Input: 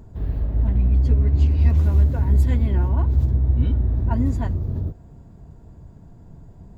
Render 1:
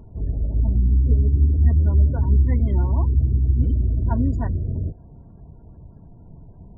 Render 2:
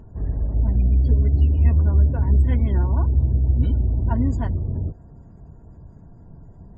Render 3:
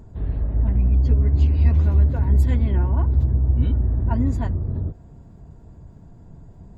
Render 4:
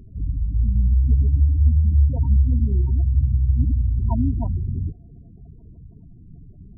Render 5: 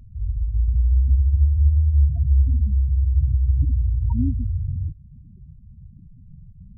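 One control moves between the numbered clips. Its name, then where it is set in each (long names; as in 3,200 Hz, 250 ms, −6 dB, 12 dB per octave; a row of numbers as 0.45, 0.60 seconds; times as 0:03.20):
gate on every frequency bin, under each frame's peak: −35, −45, −60, −20, −10 decibels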